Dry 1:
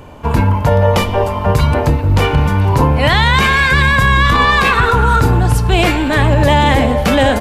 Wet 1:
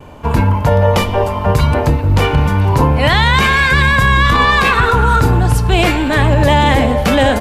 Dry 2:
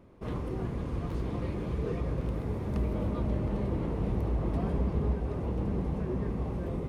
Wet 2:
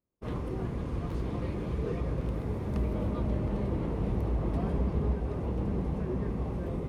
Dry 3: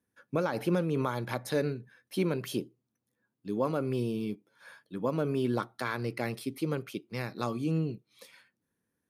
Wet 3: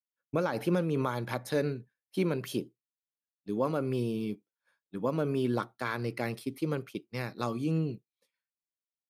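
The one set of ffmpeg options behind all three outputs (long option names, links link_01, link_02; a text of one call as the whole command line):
ffmpeg -i in.wav -af "agate=range=-33dB:threshold=-37dB:ratio=3:detection=peak" out.wav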